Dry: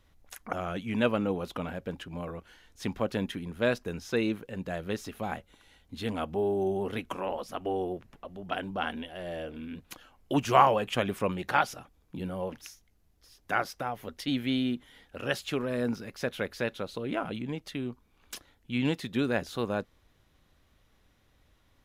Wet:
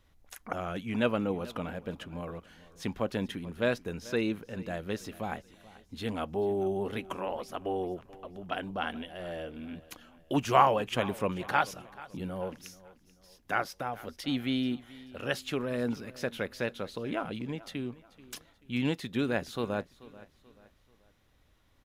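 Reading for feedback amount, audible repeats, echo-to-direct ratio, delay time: 39%, 2, -19.0 dB, 435 ms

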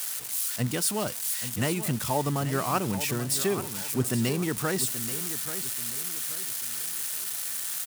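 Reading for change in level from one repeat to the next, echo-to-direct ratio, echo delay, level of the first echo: -9.0 dB, -11.5 dB, 833 ms, -12.0 dB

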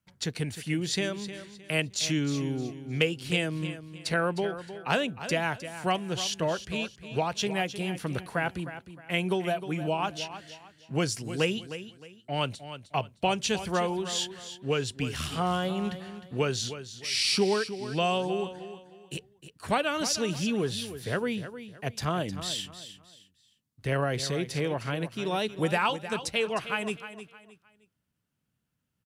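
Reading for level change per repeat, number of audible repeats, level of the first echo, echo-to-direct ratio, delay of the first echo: -10.5 dB, 3, -12.0 dB, -11.5 dB, 309 ms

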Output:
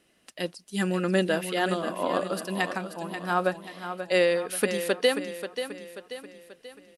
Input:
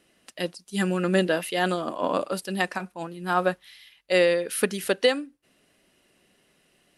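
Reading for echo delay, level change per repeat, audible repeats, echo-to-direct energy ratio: 535 ms, -6.5 dB, 4, -8.5 dB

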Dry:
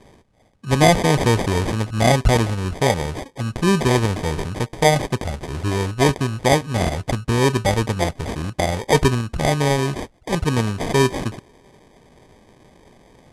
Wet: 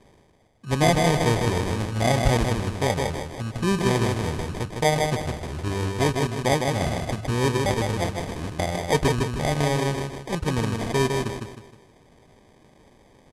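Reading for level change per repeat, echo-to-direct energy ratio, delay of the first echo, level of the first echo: -8.5 dB, -3.5 dB, 156 ms, -4.0 dB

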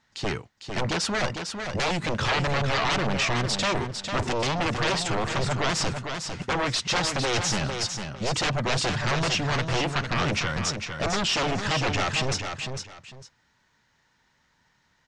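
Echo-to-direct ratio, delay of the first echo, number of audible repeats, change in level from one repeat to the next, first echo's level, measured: -6.5 dB, 452 ms, 2, -12.5 dB, -6.5 dB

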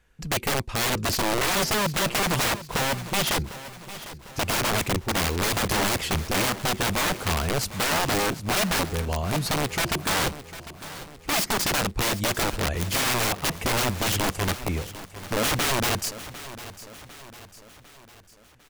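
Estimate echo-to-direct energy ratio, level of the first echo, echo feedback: -13.5 dB, -15.0 dB, 51%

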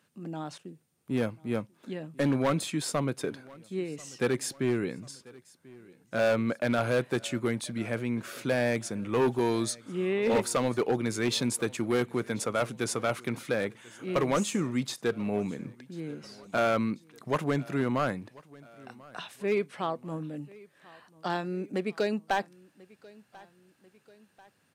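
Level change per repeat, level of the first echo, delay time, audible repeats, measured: -5.5 dB, -23.0 dB, 1040 ms, 2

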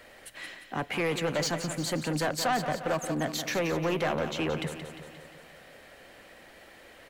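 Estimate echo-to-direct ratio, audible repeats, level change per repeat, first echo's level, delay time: -7.5 dB, 6, -4.5 dB, -9.5 dB, 176 ms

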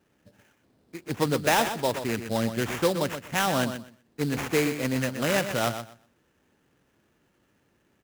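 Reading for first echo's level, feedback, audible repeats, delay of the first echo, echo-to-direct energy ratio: -9.5 dB, 18%, 2, 124 ms, -9.5 dB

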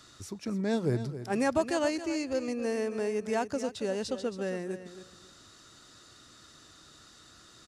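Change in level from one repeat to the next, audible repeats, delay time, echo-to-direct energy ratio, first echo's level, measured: -13.5 dB, 2, 273 ms, -12.0 dB, -12.0 dB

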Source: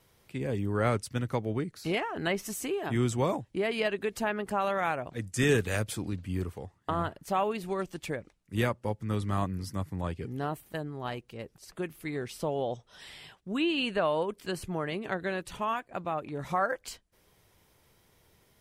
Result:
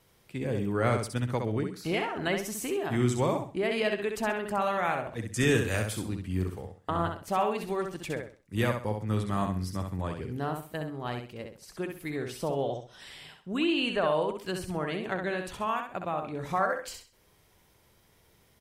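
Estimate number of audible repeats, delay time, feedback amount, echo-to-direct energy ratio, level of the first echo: 3, 65 ms, 29%, -5.0 dB, -5.5 dB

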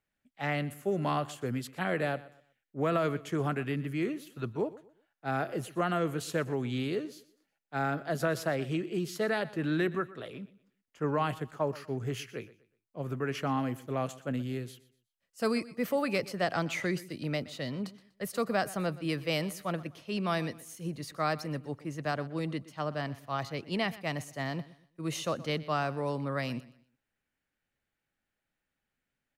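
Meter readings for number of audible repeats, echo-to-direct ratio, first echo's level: 2, -18.0 dB, -18.5 dB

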